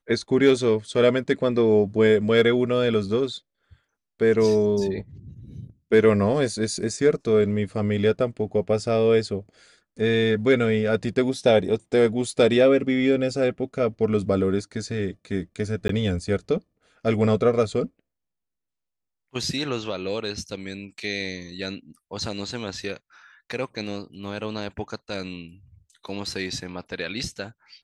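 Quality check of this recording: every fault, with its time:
15.88–15.89 gap 13 ms

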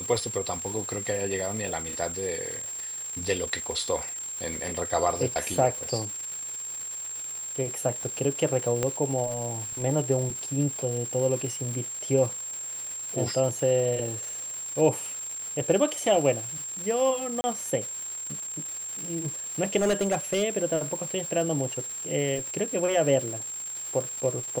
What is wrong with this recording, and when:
crackle 550/s -34 dBFS
tone 7500 Hz -33 dBFS
8.83 pop -12 dBFS
17.41–17.44 gap 30 ms
19.77–20.44 clipped -20 dBFS

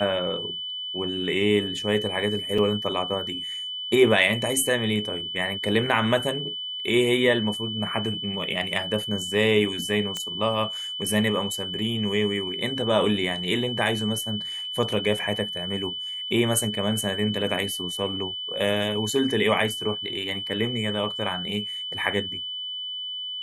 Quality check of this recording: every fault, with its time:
tone 3000 Hz -30 dBFS
2.58 gap 4.2 ms
10.17 pop -15 dBFS

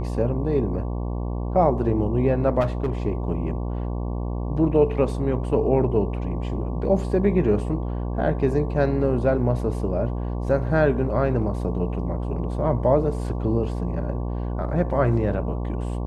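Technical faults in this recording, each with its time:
buzz 60 Hz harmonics 19 -27 dBFS
2.6–2.93 clipped -18 dBFS

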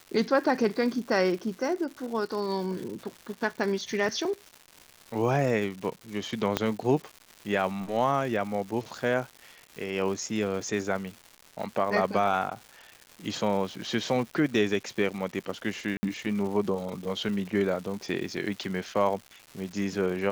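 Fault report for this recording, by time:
crackle 310/s -37 dBFS
6.57 pop -9 dBFS
15.97–16.03 gap 60 ms

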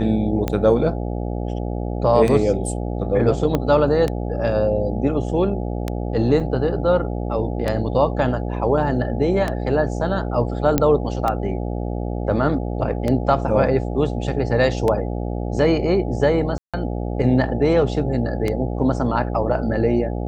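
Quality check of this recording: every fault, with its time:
buzz 60 Hz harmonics 14 -25 dBFS
tick 33 1/3 rpm -9 dBFS
3.55 pop -8 dBFS
6.4 gap 4.3 ms
10.78 pop -3 dBFS
16.58–16.74 gap 0.156 s

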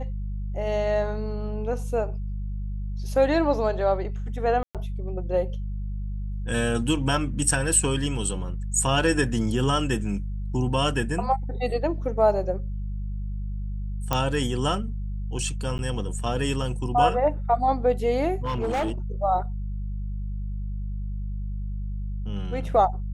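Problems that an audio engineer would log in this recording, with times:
hum 50 Hz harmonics 4 -30 dBFS
4.63–4.75 gap 0.117 s
14.13 pop -9 dBFS
15.78–15.79 gap 9.6 ms
18.42–18.91 clipped -22 dBFS

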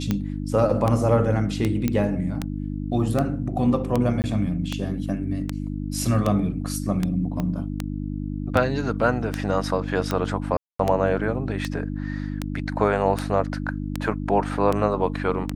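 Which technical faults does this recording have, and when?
hum 50 Hz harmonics 6 -29 dBFS
tick 78 rpm -10 dBFS
1.88 pop -10 dBFS
4.22–4.24 gap 19 ms
7.4 pop -15 dBFS
10.57–10.79 gap 0.224 s

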